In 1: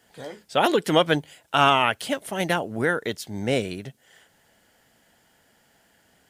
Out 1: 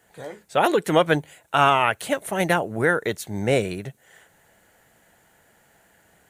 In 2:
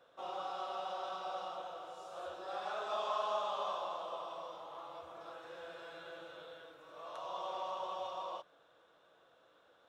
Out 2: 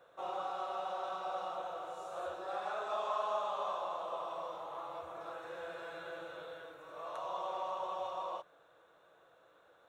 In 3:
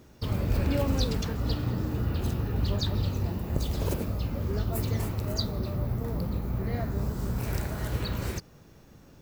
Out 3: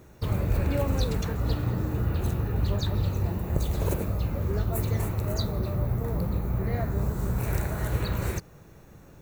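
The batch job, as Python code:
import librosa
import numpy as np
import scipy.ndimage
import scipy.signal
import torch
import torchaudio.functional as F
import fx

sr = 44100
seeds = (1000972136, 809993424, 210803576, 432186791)

p1 = fx.graphic_eq_31(x, sr, hz=(250, 3150, 5000), db=(-7, -7, -11))
p2 = fx.rider(p1, sr, range_db=4, speed_s=0.5)
p3 = p1 + (p2 * librosa.db_to_amplitude(0.0))
y = p3 * librosa.db_to_amplitude(-3.5)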